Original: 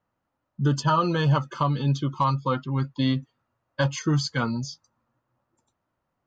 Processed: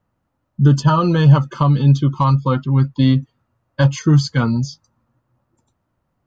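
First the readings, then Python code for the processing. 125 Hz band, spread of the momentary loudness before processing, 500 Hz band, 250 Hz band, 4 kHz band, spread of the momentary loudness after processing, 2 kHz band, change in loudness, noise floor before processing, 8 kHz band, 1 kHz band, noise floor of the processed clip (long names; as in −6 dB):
+11.5 dB, 7 LU, +6.0 dB, +9.5 dB, +3.5 dB, 7 LU, +4.0 dB, +9.5 dB, −80 dBFS, can't be measured, +4.0 dB, −72 dBFS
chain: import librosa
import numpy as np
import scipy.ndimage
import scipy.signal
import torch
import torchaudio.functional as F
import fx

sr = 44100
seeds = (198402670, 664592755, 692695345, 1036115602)

y = fx.low_shelf(x, sr, hz=260.0, db=10.5)
y = y * 10.0 ** (3.5 / 20.0)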